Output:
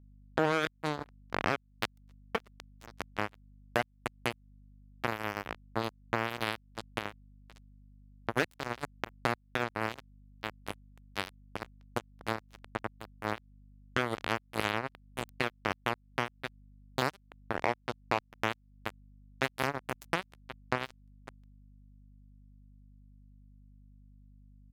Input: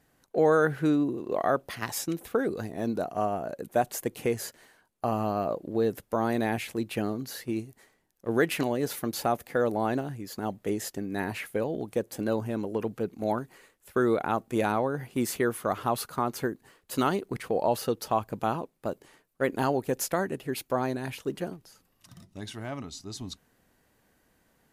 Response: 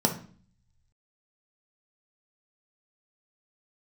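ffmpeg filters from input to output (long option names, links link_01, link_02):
-filter_complex "[0:a]asplit=2[link_01][link_02];[link_02]adelay=604,lowpass=frequency=1000:poles=1,volume=-17.5dB,asplit=2[link_03][link_04];[link_04]adelay=604,lowpass=frequency=1000:poles=1,volume=0.42,asplit=2[link_05][link_06];[link_06]adelay=604,lowpass=frequency=1000:poles=1,volume=0.42[link_07];[link_03][link_05][link_07]amix=inputs=3:normalize=0[link_08];[link_01][link_08]amix=inputs=2:normalize=0,acrusher=bits=2:mix=0:aa=0.5,highpass=54,aeval=exprs='val(0)+0.000631*(sin(2*PI*50*n/s)+sin(2*PI*2*50*n/s)/2+sin(2*PI*3*50*n/s)/3+sin(2*PI*4*50*n/s)/4+sin(2*PI*5*50*n/s)/5)':channel_layout=same,acompressor=threshold=-39dB:ratio=2.5,volume=8.5dB"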